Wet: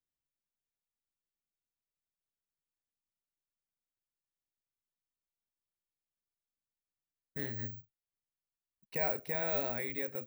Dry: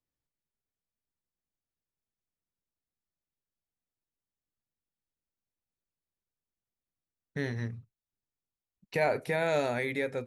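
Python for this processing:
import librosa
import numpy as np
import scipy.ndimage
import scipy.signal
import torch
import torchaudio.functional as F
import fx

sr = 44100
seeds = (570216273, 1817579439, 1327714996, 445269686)

y = (np.kron(scipy.signal.resample_poly(x, 1, 2), np.eye(2)[0]) * 2)[:len(x)]
y = F.gain(torch.from_numpy(y), -8.5).numpy()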